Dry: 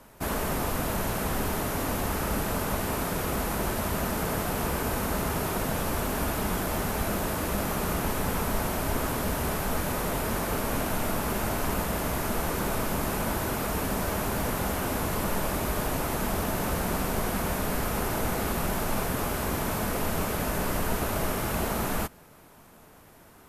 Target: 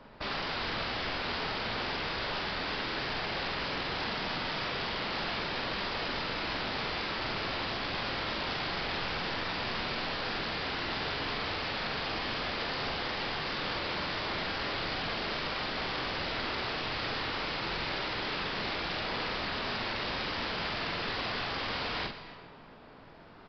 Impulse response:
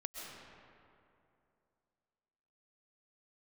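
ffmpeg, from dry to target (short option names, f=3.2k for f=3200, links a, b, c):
-filter_complex "[0:a]equalizer=f=65:t=o:w=0.85:g=-7.5,aeval=exprs='(mod(23.7*val(0)+1,2)-1)/23.7':c=same,asplit=2[a][b];[b]adelay=46,volume=-5dB[c];[a][c]amix=inputs=2:normalize=0,asplit=2[d][e];[1:a]atrim=start_sample=2205,asetrate=66150,aresample=44100,adelay=124[f];[e][f]afir=irnorm=-1:irlink=0,volume=-6.5dB[g];[d][g]amix=inputs=2:normalize=0,aresample=11025,aresample=44100"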